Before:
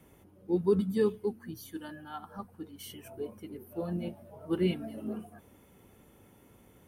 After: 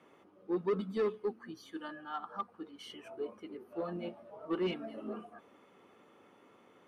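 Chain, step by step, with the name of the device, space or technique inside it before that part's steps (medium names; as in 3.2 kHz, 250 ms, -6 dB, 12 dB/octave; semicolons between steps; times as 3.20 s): intercom (band-pass 320–4100 Hz; peaking EQ 1.2 kHz +9.5 dB 0.21 oct; saturation -27 dBFS, distortion -11 dB); trim +1 dB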